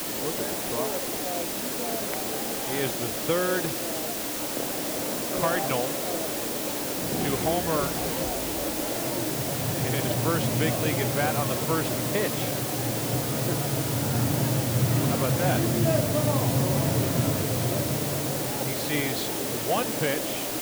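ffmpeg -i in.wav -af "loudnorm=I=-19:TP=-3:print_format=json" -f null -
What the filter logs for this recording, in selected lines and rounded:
"input_i" : "-26.2",
"input_tp" : "-10.0",
"input_lra" : "3.3",
"input_thresh" : "-36.2",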